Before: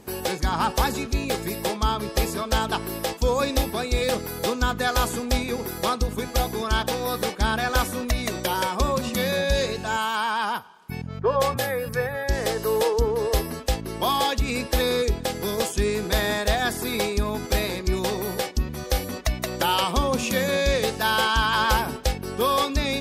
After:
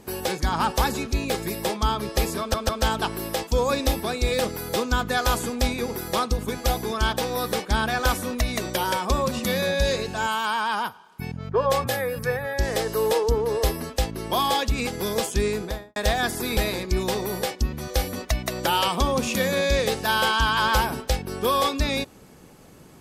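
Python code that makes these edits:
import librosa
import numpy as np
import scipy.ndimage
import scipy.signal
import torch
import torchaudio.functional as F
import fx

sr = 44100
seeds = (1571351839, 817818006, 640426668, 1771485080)

y = fx.studio_fade_out(x, sr, start_s=15.89, length_s=0.49)
y = fx.edit(y, sr, fx.stutter(start_s=2.39, slice_s=0.15, count=3),
    fx.cut(start_s=14.57, length_s=0.72),
    fx.cut(start_s=16.99, length_s=0.54), tone=tone)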